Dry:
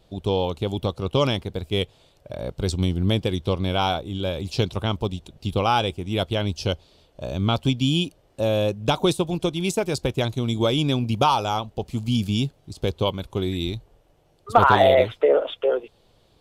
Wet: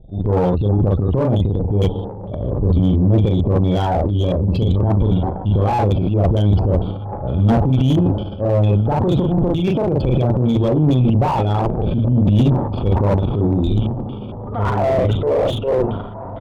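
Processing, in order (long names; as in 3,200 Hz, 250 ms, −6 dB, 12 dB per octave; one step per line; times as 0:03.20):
spectral peaks only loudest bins 32
brickwall limiter −14.5 dBFS, peak gain reduction 11 dB
double-tracking delay 39 ms −3 dB
on a send: feedback delay with all-pass diffusion 1,630 ms, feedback 52%, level −14.5 dB
on the sum: auto-filter low-pass square 2.2 Hz 890–3,200 Hz
spectral tilt −4 dB per octave
transient designer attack −5 dB, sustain +11 dB
downsampling to 11,025 Hz
tube saturation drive 8 dB, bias 0.45
slew-rate limiting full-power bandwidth 130 Hz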